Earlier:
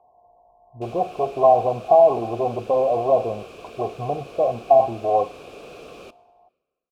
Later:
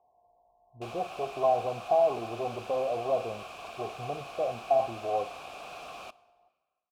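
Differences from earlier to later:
speech -10.5 dB; background: add resonant low shelf 590 Hz -8.5 dB, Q 3

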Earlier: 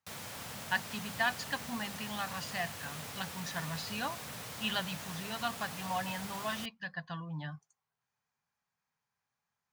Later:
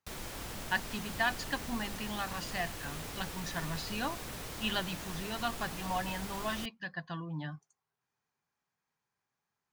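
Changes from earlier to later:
background: remove HPF 96 Hz 24 dB/oct; master: add bell 340 Hz +10.5 dB 0.61 oct

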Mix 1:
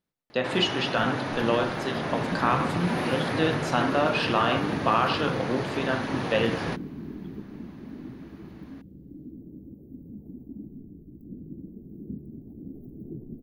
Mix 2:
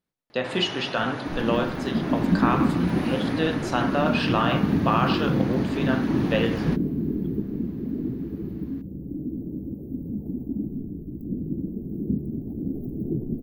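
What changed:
first sound -4.0 dB; second sound +11.5 dB

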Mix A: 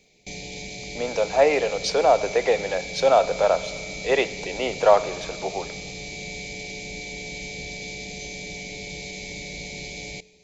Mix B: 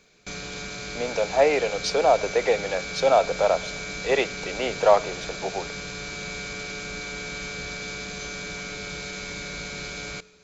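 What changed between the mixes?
speech: send -9.5 dB; background: remove Chebyshev band-stop 850–2000 Hz, order 3

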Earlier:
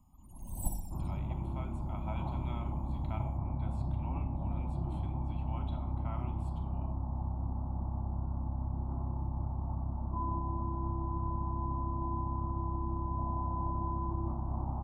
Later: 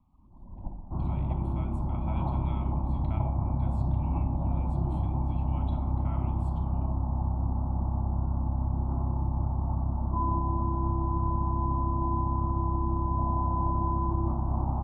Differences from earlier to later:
first sound: add rippled Chebyshev low-pass 1500 Hz, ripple 3 dB; second sound +7.0 dB

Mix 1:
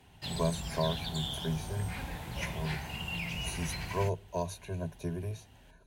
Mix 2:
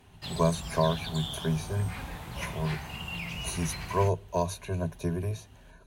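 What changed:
speech +5.5 dB; master: add bell 1200 Hz +8 dB 0.26 oct

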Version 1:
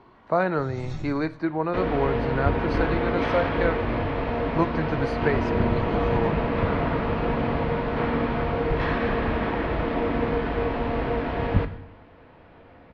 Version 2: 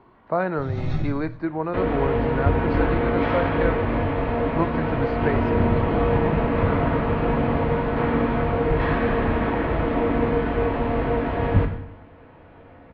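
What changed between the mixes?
first sound +9.5 dB; second sound: send +7.5 dB; master: add air absorption 230 m

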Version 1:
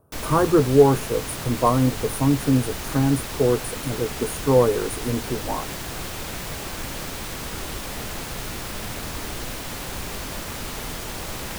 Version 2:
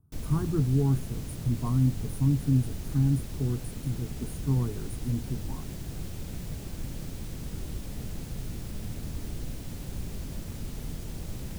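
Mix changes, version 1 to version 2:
speech: add fixed phaser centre 1300 Hz, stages 4; master: add EQ curve 160 Hz 0 dB, 1100 Hz -20 dB, 7100 Hz -13 dB

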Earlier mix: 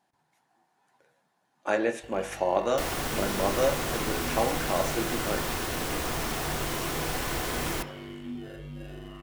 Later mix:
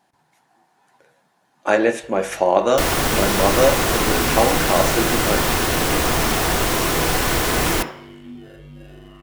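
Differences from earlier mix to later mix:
speech +9.5 dB; second sound +12.0 dB

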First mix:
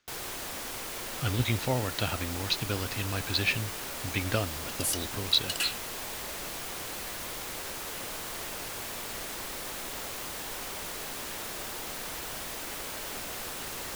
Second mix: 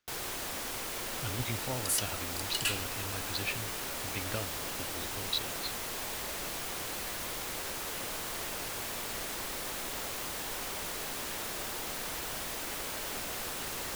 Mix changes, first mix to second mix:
speech -8.5 dB; second sound: entry -2.95 s

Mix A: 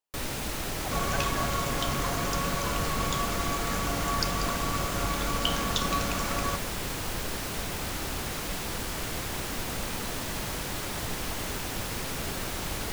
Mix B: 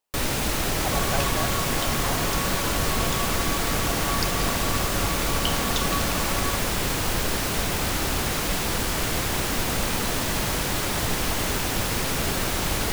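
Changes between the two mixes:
speech +8.0 dB; first sound +8.0 dB

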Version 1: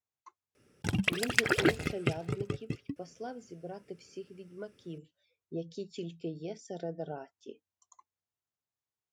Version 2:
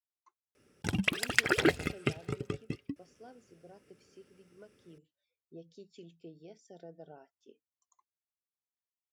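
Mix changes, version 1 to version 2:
speech -11.5 dB; master: add bell 120 Hz -4 dB 0.79 oct

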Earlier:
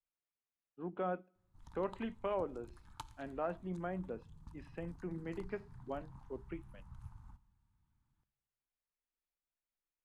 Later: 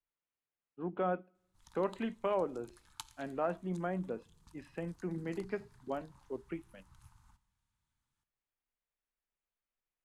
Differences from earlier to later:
speech +4.0 dB; background: add tilt shelf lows -10 dB, about 1400 Hz

